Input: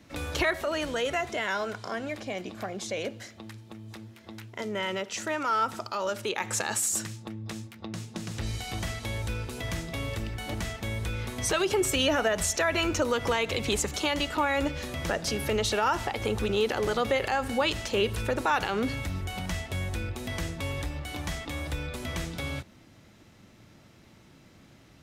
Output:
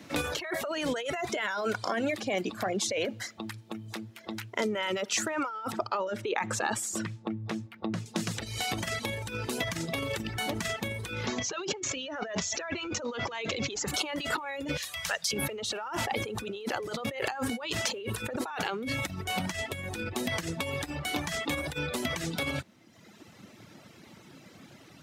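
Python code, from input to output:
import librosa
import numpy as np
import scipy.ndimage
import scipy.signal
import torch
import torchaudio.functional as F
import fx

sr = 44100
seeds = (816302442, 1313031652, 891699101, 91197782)

y = fx.lowpass(x, sr, hz=1600.0, slope=6, at=(5.72, 8.06))
y = fx.resample_bad(y, sr, factor=3, down='none', up='filtered', at=(11.26, 13.88))
y = fx.tone_stack(y, sr, knobs='10-0-10', at=(14.77, 15.33))
y = fx.over_compress(y, sr, threshold_db=-34.0, ratio=-1.0)
y = scipy.signal.sosfilt(scipy.signal.butter(2, 140.0, 'highpass', fs=sr, output='sos'), y)
y = fx.dereverb_blind(y, sr, rt60_s=1.2)
y = y * librosa.db_to_amplitude(4.0)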